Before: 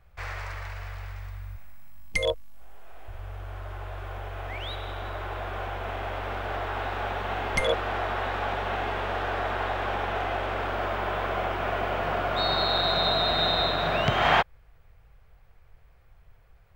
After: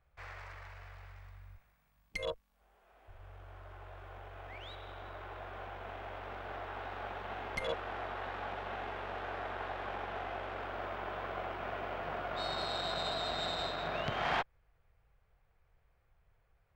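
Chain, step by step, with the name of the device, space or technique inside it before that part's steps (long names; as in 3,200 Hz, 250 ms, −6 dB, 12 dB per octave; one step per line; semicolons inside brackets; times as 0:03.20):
tube preamp driven hard (tube saturation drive 17 dB, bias 0.7; low-shelf EQ 170 Hz −4 dB; high-shelf EQ 5,000 Hz −7 dB)
level −7 dB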